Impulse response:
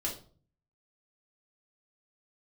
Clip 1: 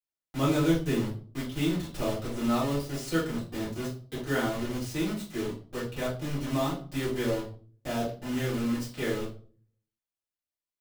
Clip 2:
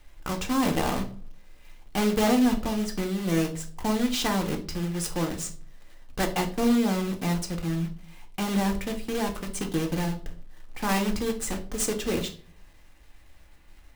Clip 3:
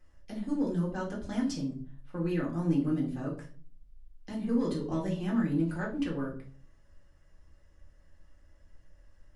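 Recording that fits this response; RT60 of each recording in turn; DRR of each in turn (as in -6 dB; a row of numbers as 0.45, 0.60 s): 3; 0.45, 0.45, 0.45 s; -10.5, 4.0, -4.0 dB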